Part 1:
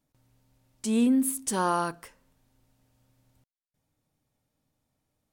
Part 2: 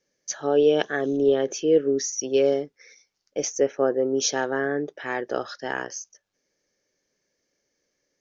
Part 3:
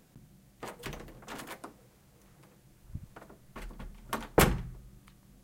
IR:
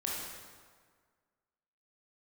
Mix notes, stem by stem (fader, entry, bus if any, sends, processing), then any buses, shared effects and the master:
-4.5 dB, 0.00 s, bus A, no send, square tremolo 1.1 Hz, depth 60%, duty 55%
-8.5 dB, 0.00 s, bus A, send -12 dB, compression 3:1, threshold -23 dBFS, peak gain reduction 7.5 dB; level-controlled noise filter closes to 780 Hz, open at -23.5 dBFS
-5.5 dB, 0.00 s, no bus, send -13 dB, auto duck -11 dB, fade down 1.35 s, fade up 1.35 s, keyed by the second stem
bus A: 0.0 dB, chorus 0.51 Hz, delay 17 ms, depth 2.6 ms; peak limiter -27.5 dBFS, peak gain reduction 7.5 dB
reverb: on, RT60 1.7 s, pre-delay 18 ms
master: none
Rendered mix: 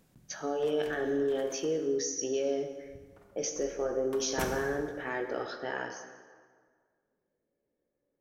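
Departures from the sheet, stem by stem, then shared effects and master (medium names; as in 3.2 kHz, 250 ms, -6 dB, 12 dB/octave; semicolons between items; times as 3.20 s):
stem 1: muted; stem 2 -8.5 dB -> -1.5 dB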